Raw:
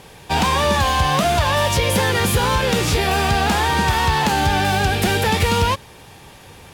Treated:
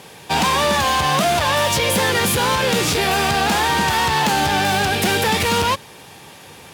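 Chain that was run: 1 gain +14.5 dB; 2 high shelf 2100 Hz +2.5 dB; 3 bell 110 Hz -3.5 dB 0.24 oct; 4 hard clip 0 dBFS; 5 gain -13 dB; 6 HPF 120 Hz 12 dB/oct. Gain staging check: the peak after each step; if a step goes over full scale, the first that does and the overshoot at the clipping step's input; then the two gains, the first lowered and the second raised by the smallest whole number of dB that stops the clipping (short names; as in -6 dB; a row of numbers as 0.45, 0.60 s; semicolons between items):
+8.0, +9.0, +8.5, 0.0, -13.0, -7.0 dBFS; step 1, 8.5 dB; step 1 +5.5 dB, step 5 -4 dB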